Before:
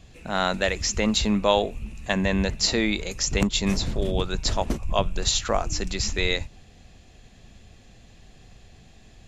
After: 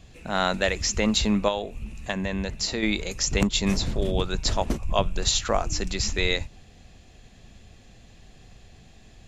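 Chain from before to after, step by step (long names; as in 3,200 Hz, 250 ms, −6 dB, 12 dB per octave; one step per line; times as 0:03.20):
0:01.48–0:02.83: downward compressor 2.5 to 1, threshold −27 dBFS, peak gain reduction 8.5 dB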